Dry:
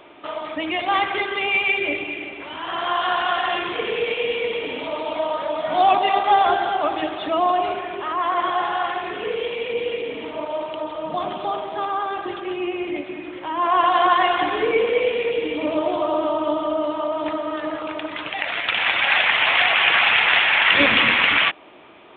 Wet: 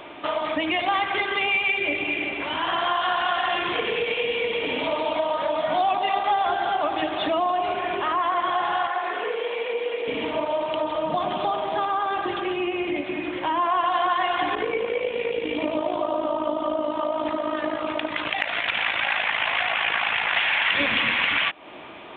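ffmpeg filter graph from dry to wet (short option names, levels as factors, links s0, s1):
-filter_complex "[0:a]asettb=1/sr,asplit=3[s0][s1][s2];[s0]atrim=end=8.874[s3];[s1]atrim=start=8.87:end=10.08,asetpts=PTS-STARTPTS,afade=t=in:d=0.004:c=qsin,afade=t=out:st=1.206:d=0.004:c=qsin,acrossover=split=2900[s4][s5];[s5]acompressor=threshold=0.00501:ratio=4:attack=1:release=60[s6];[s4][s6]amix=inputs=2:normalize=0,highpass=530,equalizer=f=2700:t=o:w=0.88:g=-6[s7];[s2]atrim=start=10.076[s8];[s3][s7]acrossfade=d=0.004:c1=hsin:c2=qsin[s9];[s9][s8]acrossfade=d=0.004:c1=qsin:c2=hsin,asettb=1/sr,asplit=3[s10][s11][s12];[s10]atrim=end=14.554[s13];[s11]atrim=start=14.55:end=20.37,asetpts=PTS-STARTPTS,afade=t=in:d=0.004:c=qsin,afade=t=out:st=5.816:d=0.004:c=qsin,tremolo=f=54:d=0.621,adynamicequalizer=threshold=0.0282:dfrequency=2000:dqfactor=0.7:tfrequency=2000:tqfactor=0.7:attack=5:release=100:ratio=0.375:range=2.5:mode=cutabove:tftype=highshelf[s14];[s12]atrim=start=20.366[s15];[s13][s14]acrossfade=d=0.004:c1=hsin:c2=qsin[s16];[s16][s15]acrossfade=d=0.004:c1=qsin:c2=hsin,bandreject=f=1300:w=23,acompressor=threshold=0.0398:ratio=4,equalizer=f=400:w=2.3:g=-3.5,volume=2.11"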